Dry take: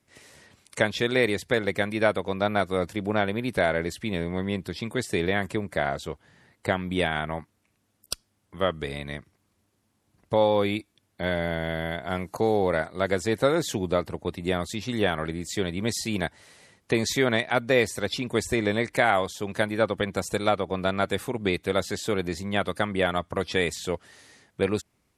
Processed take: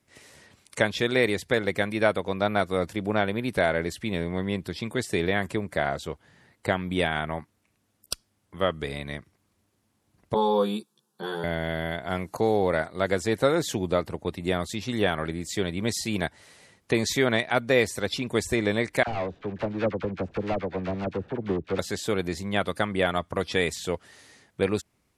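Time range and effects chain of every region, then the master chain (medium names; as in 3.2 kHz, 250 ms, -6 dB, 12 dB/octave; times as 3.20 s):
10.34–11.44 s: high-pass 150 Hz 24 dB/octave + static phaser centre 420 Hz, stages 8 + doubling 14 ms -2 dB
19.03–21.79 s: median filter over 41 samples + low-pass 3.2 kHz + phase dispersion lows, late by 43 ms, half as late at 1 kHz
whole clip: none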